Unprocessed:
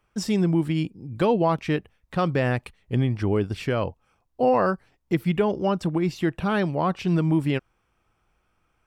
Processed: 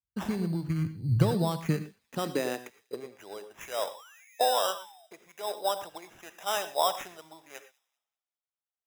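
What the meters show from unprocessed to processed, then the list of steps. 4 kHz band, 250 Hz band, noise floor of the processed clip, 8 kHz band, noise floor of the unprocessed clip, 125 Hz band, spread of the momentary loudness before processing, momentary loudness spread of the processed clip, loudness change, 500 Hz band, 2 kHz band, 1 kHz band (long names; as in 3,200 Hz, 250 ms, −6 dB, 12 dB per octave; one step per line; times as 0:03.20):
+2.0 dB, −11.0 dB, below −85 dBFS, can't be measured, −71 dBFS, −6.5 dB, 7 LU, 22 LU, −6.0 dB, −8.0 dB, −8.5 dB, −4.0 dB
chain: dynamic equaliser 280 Hz, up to −4 dB, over −34 dBFS, Q 1.7
downward compressor 16 to 1, threshold −29 dBFS, peak gain reduction 13 dB
high-pass filter sweep 67 Hz → 680 Hz, 0:00.35–0:03.51
sound drawn into the spectrogram fall, 0:03.94–0:05.07, 630–3,600 Hz −46 dBFS
decimation without filtering 10×
delay with a high-pass on its return 194 ms, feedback 68%, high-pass 2,600 Hz, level −20.5 dB
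reverb whose tail is shaped and stops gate 140 ms rising, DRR 9 dB
multiband upward and downward expander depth 100%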